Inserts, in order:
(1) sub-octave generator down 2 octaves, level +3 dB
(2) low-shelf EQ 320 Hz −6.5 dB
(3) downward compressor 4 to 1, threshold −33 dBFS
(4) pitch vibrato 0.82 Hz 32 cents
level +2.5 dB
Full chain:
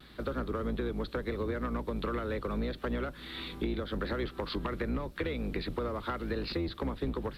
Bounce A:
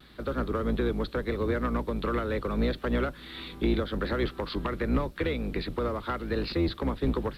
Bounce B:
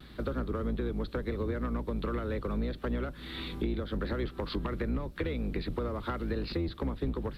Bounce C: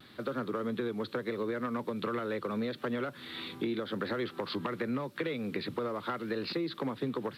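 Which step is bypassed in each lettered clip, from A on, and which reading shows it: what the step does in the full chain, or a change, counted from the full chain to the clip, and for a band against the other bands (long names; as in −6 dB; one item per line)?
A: 3, change in momentary loudness spread +2 LU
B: 2, 125 Hz band +5.0 dB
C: 1, 125 Hz band −5.5 dB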